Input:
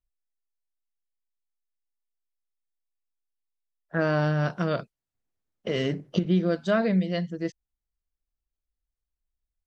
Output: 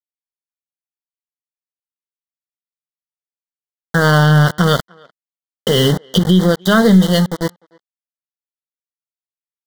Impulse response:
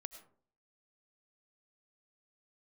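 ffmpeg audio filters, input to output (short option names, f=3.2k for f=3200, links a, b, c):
-filter_complex "[0:a]equalizer=f=315:t=o:w=0.33:g=-11,equalizer=f=630:t=o:w=0.33:g=-10,equalizer=f=2k:t=o:w=0.33:g=-7,equalizer=f=3.15k:t=o:w=0.33:g=11,aeval=exprs='val(0)*gte(abs(val(0)),0.02)':c=same,aeval=exprs='0.251*(cos(1*acos(clip(val(0)/0.251,-1,1)))-cos(1*PI/2))+0.01*(cos(4*acos(clip(val(0)/0.251,-1,1)))-cos(4*PI/2))':c=same,asuperstop=centerf=2500:order=8:qfactor=2.5,asplit=2[a][b];[b]adelay=300,highpass=300,lowpass=3.4k,asoftclip=type=hard:threshold=-21.5dB,volume=-28dB[c];[a][c]amix=inputs=2:normalize=0,alimiter=level_in=17.5dB:limit=-1dB:release=50:level=0:latency=1,volume=-1dB"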